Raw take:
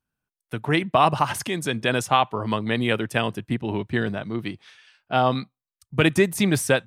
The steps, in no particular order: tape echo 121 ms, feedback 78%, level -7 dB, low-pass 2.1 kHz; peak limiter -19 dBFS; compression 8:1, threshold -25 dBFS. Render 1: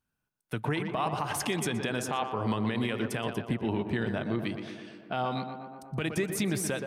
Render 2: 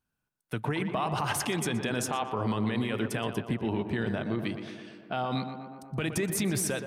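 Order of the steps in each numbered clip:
compression > tape echo > peak limiter; peak limiter > compression > tape echo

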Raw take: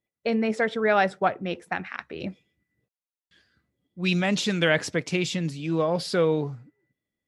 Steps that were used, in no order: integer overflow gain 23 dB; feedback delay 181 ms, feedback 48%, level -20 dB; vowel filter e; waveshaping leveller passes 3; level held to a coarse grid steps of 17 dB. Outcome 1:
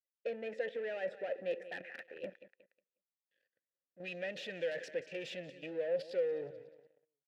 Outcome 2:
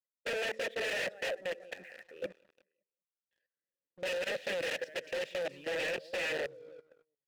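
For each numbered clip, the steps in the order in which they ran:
level held to a coarse grid > feedback delay > integer overflow > waveshaping leveller > vowel filter; feedback delay > integer overflow > vowel filter > waveshaping leveller > level held to a coarse grid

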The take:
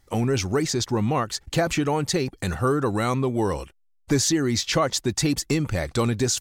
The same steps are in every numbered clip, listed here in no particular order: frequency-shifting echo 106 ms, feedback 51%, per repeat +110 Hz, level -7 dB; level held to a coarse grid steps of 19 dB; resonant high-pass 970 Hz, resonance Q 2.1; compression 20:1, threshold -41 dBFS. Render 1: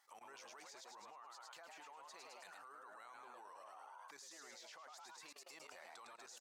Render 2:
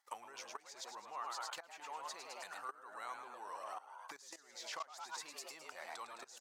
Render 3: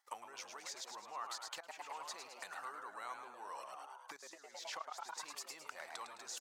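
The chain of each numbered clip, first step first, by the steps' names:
frequency-shifting echo > compression > resonant high-pass > level held to a coarse grid; frequency-shifting echo > level held to a coarse grid > compression > resonant high-pass; level held to a coarse grid > frequency-shifting echo > compression > resonant high-pass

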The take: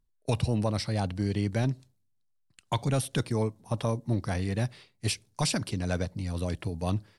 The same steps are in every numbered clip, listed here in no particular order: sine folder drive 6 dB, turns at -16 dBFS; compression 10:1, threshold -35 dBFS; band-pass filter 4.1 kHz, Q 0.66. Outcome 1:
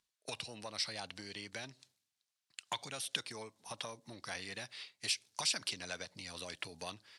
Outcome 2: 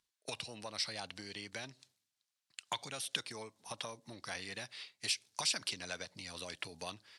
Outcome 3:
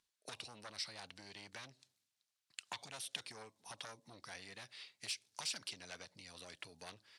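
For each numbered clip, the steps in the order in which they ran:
compression > sine folder > band-pass filter; compression > band-pass filter > sine folder; sine folder > compression > band-pass filter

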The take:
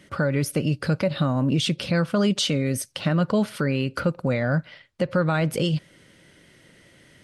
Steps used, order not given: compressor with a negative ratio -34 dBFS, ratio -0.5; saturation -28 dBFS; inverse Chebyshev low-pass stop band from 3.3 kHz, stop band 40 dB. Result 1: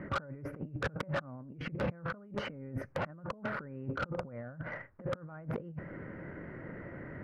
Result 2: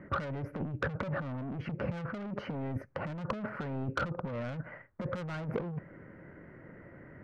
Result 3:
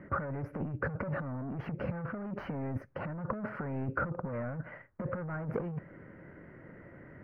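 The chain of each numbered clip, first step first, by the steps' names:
inverse Chebyshev low-pass > compressor with a negative ratio > saturation; inverse Chebyshev low-pass > saturation > compressor with a negative ratio; saturation > inverse Chebyshev low-pass > compressor with a negative ratio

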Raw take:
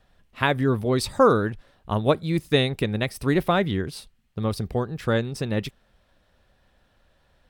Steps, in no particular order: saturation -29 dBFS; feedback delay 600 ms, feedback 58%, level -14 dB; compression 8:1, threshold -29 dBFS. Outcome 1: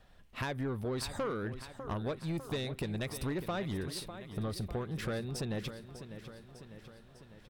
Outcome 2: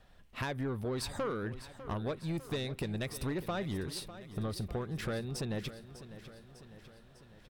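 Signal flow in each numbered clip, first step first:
compression > feedback delay > saturation; compression > saturation > feedback delay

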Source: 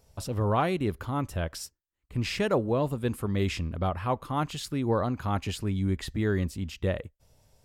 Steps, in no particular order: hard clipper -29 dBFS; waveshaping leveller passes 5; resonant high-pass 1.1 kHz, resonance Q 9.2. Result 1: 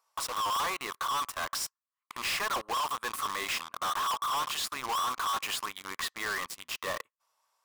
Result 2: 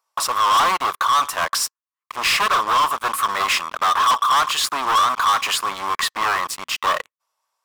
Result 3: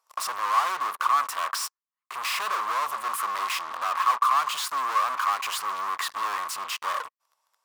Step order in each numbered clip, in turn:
resonant high-pass > waveshaping leveller > hard clipper; hard clipper > resonant high-pass > waveshaping leveller; waveshaping leveller > hard clipper > resonant high-pass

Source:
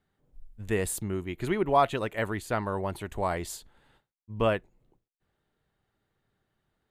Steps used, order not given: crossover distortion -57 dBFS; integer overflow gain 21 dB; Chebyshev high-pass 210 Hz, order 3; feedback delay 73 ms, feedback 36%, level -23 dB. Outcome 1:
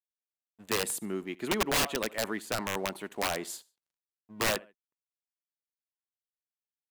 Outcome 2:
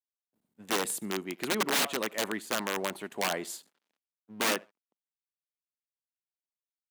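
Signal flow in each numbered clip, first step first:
Chebyshev high-pass > crossover distortion > feedback delay > integer overflow; feedback delay > crossover distortion > integer overflow > Chebyshev high-pass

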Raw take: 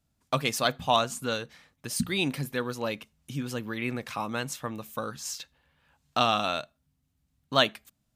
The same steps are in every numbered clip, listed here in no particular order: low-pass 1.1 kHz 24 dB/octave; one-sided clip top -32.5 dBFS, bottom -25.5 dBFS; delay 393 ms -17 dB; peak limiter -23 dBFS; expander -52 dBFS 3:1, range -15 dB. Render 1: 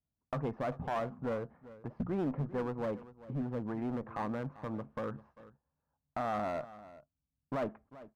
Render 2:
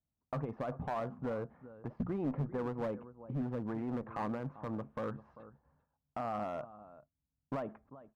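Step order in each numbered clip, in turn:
low-pass > peak limiter > one-sided clip > delay > expander; peak limiter > delay > expander > low-pass > one-sided clip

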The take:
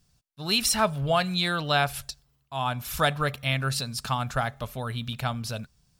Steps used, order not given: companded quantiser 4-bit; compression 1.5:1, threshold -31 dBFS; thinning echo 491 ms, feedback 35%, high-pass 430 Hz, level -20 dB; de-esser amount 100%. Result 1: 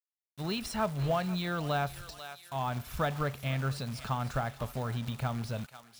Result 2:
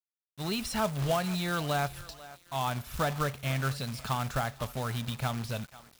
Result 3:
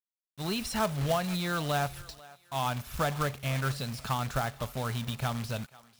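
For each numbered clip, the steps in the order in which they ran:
companded quantiser > thinning echo > compression > de-esser; de-esser > thinning echo > companded quantiser > compression; de-esser > compression > companded quantiser > thinning echo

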